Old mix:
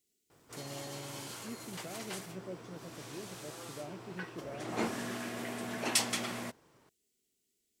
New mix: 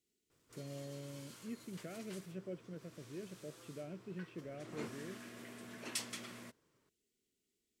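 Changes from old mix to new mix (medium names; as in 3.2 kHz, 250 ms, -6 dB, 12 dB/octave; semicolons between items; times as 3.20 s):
second voice: add treble shelf 4.5 kHz -9.5 dB; background -11.0 dB; master: add peaking EQ 780 Hz -9 dB 0.49 oct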